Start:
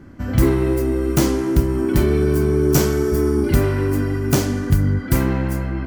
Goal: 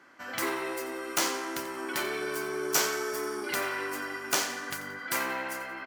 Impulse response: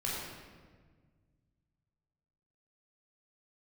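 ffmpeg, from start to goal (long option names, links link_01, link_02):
-af "highpass=960,highshelf=frequency=10000:gain=-8.5,aecho=1:1:88|176|264:0.2|0.0718|0.0259"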